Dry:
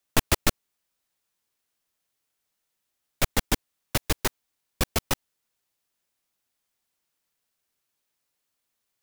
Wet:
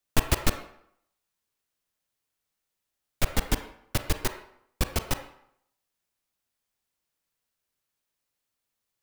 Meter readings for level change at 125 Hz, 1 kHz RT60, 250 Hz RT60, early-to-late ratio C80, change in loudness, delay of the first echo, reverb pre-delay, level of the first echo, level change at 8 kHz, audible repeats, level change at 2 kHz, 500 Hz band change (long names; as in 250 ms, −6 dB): +0.5 dB, 0.70 s, 0.70 s, 11.5 dB, −2.5 dB, no echo audible, 29 ms, no echo audible, −4.0 dB, no echo audible, −3.0 dB, −2.5 dB